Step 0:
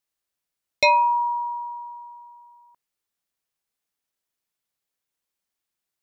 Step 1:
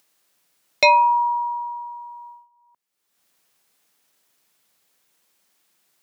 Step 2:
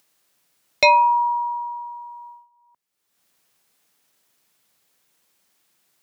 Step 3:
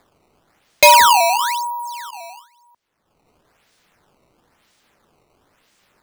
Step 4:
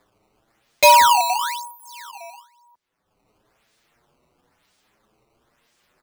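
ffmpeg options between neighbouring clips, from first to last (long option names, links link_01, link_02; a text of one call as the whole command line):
ffmpeg -i in.wav -filter_complex "[0:a]agate=range=-25dB:threshold=-47dB:ratio=16:detection=peak,acrossover=split=110[link_01][link_02];[link_02]acompressor=mode=upward:threshold=-39dB:ratio=2.5[link_03];[link_01][link_03]amix=inputs=2:normalize=0,volume=3dB" out.wav
ffmpeg -i in.wav -af "lowshelf=frequency=100:gain=8.5" out.wav
ffmpeg -i in.wav -af "acrusher=samples=15:mix=1:aa=0.000001:lfo=1:lforange=24:lforate=1,volume=5.5dB" out.wav
ffmpeg -i in.wav -filter_complex "[0:a]asplit=2[link_01][link_02];[link_02]adelay=7.5,afreqshift=0.63[link_03];[link_01][link_03]amix=inputs=2:normalize=1,volume=-1.5dB" out.wav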